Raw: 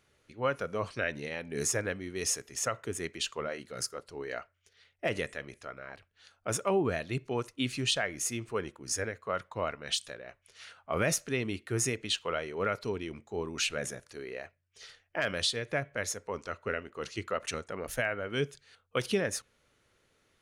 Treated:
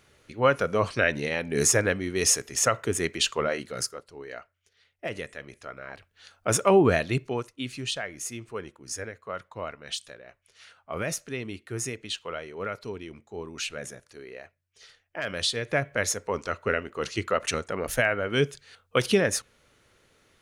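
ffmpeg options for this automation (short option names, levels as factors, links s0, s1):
-af "volume=33.5,afade=t=out:st=3.58:d=0.47:silence=0.281838,afade=t=in:st=5.28:d=1.66:silence=0.251189,afade=t=out:st=6.94:d=0.55:silence=0.251189,afade=t=in:st=15.18:d=0.74:silence=0.334965"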